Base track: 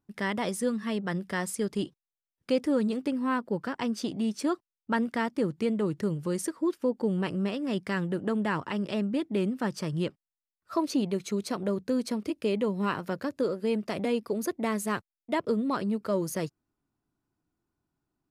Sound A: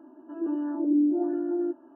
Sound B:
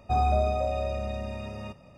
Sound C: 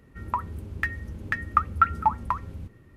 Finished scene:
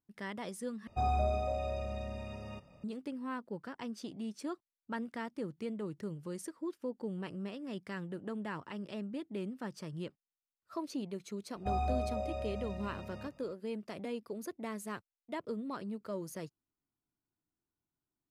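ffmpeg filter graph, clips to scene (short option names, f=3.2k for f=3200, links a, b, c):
-filter_complex "[2:a]asplit=2[a][b];[0:a]volume=-11.5dB,asplit=2[c][d];[c]atrim=end=0.874[e];[a]atrim=end=1.97,asetpts=PTS-STARTPTS,volume=-7dB[f];[d]atrim=start=2.836[g];[b]atrim=end=1.97,asetpts=PTS-STARTPTS,volume=-9.5dB,afade=t=in:d=0.004:c=hsin,afade=t=out:st=1.966:d=0.004:c=hsin,adelay=11560[h];[e][f]acrossfade=d=0.004:c1=hsin:c2=hsin[i];[i][g]acrossfade=d=0.004:c1=hsin:c2=hsin[j];[j][h]amix=inputs=2:normalize=0"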